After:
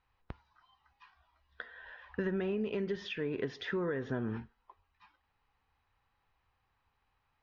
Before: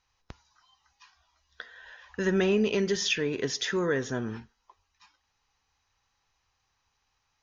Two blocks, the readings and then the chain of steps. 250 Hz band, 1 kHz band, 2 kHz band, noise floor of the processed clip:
-7.0 dB, -7.0 dB, -9.0 dB, -79 dBFS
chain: compressor 12:1, threshold -31 dBFS, peak gain reduction 11 dB; air absorption 400 m; gain +1.5 dB

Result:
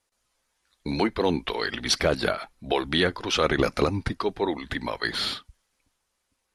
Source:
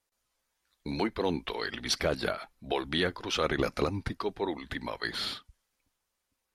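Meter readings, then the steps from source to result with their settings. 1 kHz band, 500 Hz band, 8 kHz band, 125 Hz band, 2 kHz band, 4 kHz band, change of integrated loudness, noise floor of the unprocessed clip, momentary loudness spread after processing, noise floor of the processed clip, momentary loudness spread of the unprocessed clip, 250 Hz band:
+6.0 dB, +6.0 dB, +6.0 dB, +6.0 dB, +6.0 dB, +6.0 dB, +6.0 dB, -83 dBFS, 8 LU, -77 dBFS, 8 LU, +6.0 dB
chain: steep low-pass 12000 Hz 72 dB/oct; gain +6 dB

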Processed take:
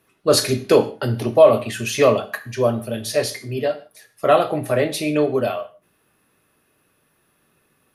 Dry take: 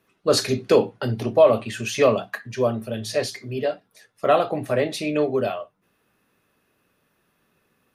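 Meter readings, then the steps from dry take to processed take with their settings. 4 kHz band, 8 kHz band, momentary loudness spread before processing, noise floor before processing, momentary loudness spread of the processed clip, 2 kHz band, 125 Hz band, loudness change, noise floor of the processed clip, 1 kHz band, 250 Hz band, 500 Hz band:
+3.5 dB, +5.0 dB, 11 LU, -69 dBFS, 12 LU, +3.0 dB, +3.5 dB, +3.0 dB, -65 dBFS, +3.0 dB, +3.0 dB, +3.0 dB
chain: bell 11000 Hz +10 dB 0.36 oct; non-linear reverb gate 0.18 s falling, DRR 10 dB; gain +2.5 dB

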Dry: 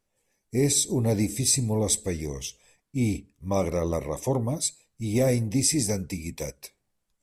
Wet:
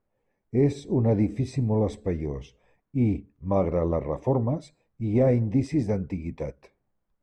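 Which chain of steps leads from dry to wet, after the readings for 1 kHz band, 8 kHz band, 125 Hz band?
+1.5 dB, under -25 dB, +2.0 dB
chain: LPF 1400 Hz 12 dB/oct; gain +2 dB

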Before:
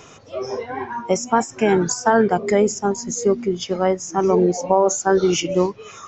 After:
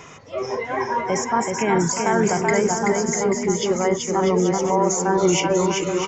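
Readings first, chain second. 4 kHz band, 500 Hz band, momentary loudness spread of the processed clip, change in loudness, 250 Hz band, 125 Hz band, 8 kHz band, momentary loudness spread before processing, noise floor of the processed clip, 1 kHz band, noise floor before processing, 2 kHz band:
+1.0 dB, -2.0 dB, 6 LU, -1.0 dB, -0.5 dB, +1.5 dB, n/a, 11 LU, -40 dBFS, 0.0 dB, -44 dBFS, +2.0 dB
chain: limiter -12.5 dBFS, peak gain reduction 10 dB; thirty-one-band EQ 160 Hz +5 dB, 1000 Hz +6 dB, 2000 Hz +10 dB, 4000 Hz -3 dB; bouncing-ball echo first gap 0.38 s, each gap 0.7×, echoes 5

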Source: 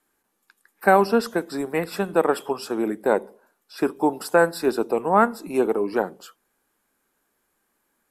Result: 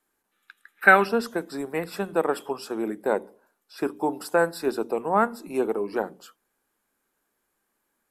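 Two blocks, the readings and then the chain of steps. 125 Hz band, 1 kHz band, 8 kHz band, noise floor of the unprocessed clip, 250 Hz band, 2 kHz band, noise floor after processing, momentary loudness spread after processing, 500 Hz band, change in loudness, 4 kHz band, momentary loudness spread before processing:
-4.5 dB, -3.0 dB, -4.0 dB, -73 dBFS, -4.5 dB, +4.0 dB, -77 dBFS, 13 LU, -4.0 dB, -2.5 dB, -3.0 dB, 9 LU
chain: spectral gain 0.32–1.09, 1200–4100 Hz +12 dB; notches 60/120/180/240/300 Hz; gain -4 dB

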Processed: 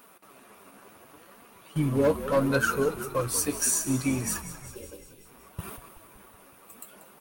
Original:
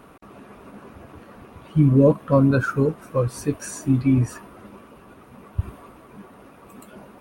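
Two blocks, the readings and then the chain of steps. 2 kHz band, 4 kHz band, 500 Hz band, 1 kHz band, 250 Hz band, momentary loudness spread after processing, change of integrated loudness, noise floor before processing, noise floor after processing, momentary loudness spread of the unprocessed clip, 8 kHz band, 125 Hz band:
+1.0 dB, +7.0 dB, -5.0 dB, -2.0 dB, -9.0 dB, 21 LU, -5.5 dB, -48 dBFS, -55 dBFS, 15 LU, +10.5 dB, -12.0 dB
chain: half-wave gain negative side -3 dB; spectral gain 4.75–5.01, 270–1500 Hz +10 dB; gate -38 dBFS, range -9 dB; RIAA curve recording; spectral delete 4.7–5.25, 590–2400 Hz; in parallel at -2 dB: compressor, threshold -35 dBFS, peak gain reduction 17.5 dB; on the sum: hard clip -15 dBFS, distortion -19 dB; flange 0.69 Hz, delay 3.9 ms, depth 7.4 ms, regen +51%; frequency-shifting echo 0.187 s, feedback 63%, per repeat -46 Hz, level -13.5 dB; gain +2.5 dB

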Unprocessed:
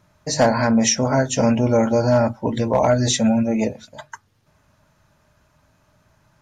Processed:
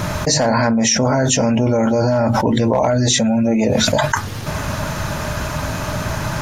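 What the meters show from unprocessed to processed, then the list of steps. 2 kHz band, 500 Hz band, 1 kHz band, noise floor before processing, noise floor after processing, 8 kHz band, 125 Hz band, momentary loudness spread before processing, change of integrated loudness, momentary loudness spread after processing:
+6.5 dB, +2.0 dB, +4.0 dB, -62 dBFS, -25 dBFS, +5.5 dB, +5.0 dB, 6 LU, +1.5 dB, 8 LU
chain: fast leveller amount 100%; gain -3 dB

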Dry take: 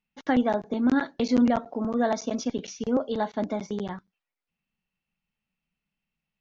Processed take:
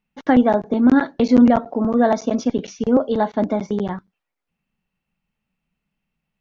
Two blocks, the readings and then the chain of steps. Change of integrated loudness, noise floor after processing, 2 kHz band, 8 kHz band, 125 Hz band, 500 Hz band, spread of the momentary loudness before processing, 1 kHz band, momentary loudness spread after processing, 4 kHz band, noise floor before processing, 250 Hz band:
+8.5 dB, -81 dBFS, +6.0 dB, n/a, +9.0 dB, +8.5 dB, 10 LU, +8.0 dB, 10 LU, +2.5 dB, under -85 dBFS, +9.0 dB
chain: high shelf 2400 Hz -9.5 dB; gain +9 dB

